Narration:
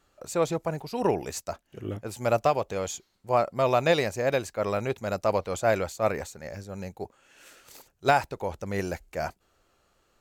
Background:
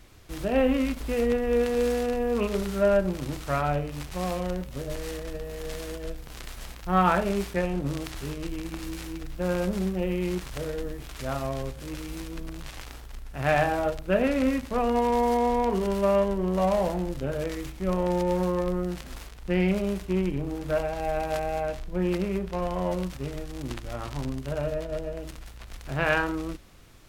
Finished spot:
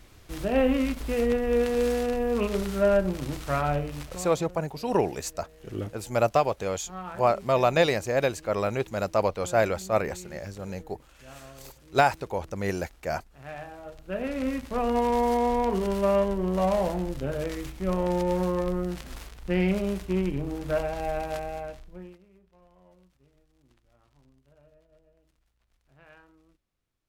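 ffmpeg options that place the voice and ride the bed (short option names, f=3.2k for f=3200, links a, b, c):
-filter_complex "[0:a]adelay=3900,volume=1dB[a];[1:a]volume=16.5dB,afade=t=out:st=3.91:d=0.44:silence=0.141254,afade=t=in:st=13.83:d=1.14:silence=0.149624,afade=t=out:st=20.96:d=1.22:silence=0.0334965[b];[a][b]amix=inputs=2:normalize=0"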